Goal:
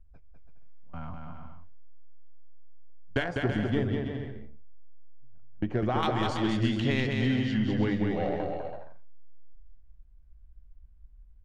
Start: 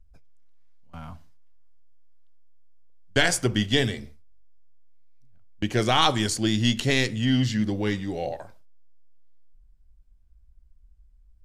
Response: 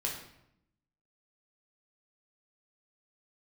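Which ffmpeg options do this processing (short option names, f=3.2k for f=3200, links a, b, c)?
-af "asetnsamples=n=441:p=0,asendcmd='3.24 lowpass f 1200;6.03 lowpass f 2500',lowpass=2.1k,acompressor=threshold=-25dB:ratio=4,aeval=exprs='0.168*(cos(1*acos(clip(val(0)/0.168,-1,1)))-cos(1*PI/2))+0.00531*(cos(6*acos(clip(val(0)/0.168,-1,1)))-cos(6*PI/2))':c=same,aecho=1:1:200|330|414.5|469.4|505.1:0.631|0.398|0.251|0.158|0.1"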